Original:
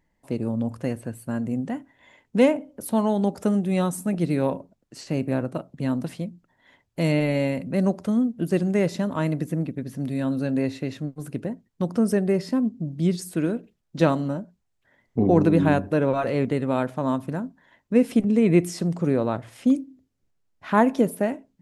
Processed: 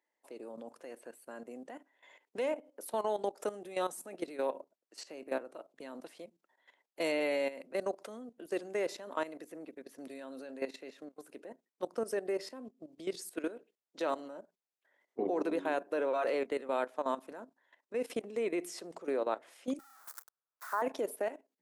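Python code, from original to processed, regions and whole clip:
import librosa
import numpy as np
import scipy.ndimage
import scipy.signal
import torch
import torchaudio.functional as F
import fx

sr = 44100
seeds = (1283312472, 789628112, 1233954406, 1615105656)

y = fx.chain(x, sr, fx.crossing_spikes(level_db=-15.5),
    fx.highpass(hz=1100.0, slope=6),
    fx.high_shelf_res(hz=1900.0, db=-12.5, q=3.0), at=(19.79, 20.82))
y = scipy.signal.sosfilt(scipy.signal.butter(4, 370.0, 'highpass', fs=sr, output='sos'), y)
y = fx.level_steps(y, sr, step_db=14)
y = y * 10.0 ** (-3.5 / 20.0)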